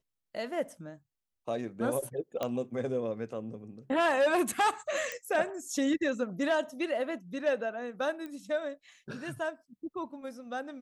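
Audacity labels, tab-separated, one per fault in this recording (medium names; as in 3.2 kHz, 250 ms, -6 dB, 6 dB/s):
2.430000	2.430000	pop -18 dBFS
5.120000	5.120000	pop -22 dBFS
8.260000	8.260000	pop -29 dBFS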